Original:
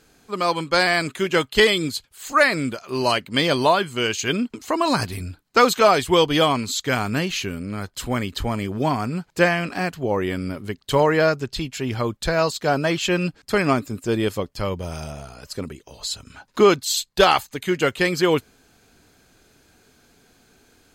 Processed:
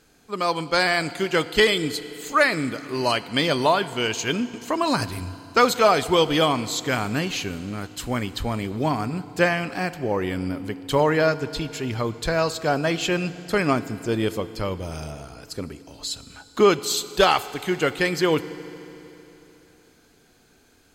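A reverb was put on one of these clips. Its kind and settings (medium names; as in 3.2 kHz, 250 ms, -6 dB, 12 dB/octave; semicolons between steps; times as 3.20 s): FDN reverb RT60 3.3 s, high-frequency decay 1×, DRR 14 dB; trim -2 dB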